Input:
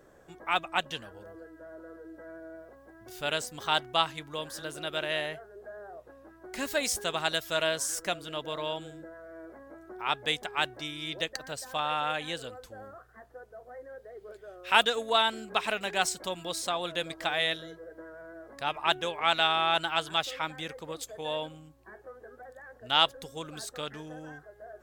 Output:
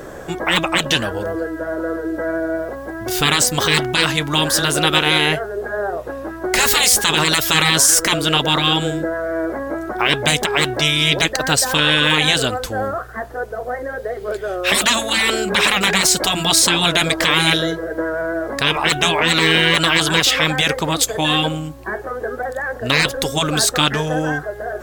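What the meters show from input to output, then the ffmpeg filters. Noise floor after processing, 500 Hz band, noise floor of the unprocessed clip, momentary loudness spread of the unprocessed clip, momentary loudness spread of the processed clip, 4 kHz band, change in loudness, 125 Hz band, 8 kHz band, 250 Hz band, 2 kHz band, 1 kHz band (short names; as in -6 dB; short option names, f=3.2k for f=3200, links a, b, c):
-33 dBFS, +13.5 dB, -57 dBFS, 22 LU, 13 LU, +15.5 dB, +14.0 dB, +23.0 dB, +21.0 dB, +20.5 dB, +15.5 dB, +10.0 dB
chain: -af "afftfilt=real='re*lt(hypot(re,im),0.0631)':imag='im*lt(hypot(re,im),0.0631)':win_size=1024:overlap=0.75,alimiter=level_in=25.5dB:limit=-1dB:release=50:level=0:latency=1,volume=-1dB"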